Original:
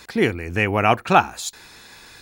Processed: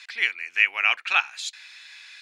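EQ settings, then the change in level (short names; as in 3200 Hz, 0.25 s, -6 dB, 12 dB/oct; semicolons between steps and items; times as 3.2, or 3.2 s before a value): resonant high-pass 2300 Hz, resonance Q 1.9; air absorption 82 m; 0.0 dB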